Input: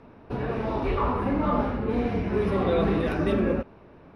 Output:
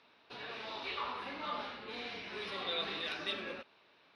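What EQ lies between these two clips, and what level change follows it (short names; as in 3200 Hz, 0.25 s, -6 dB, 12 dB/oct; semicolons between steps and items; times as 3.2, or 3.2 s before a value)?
band-pass 3900 Hz, Q 2.7; +8.0 dB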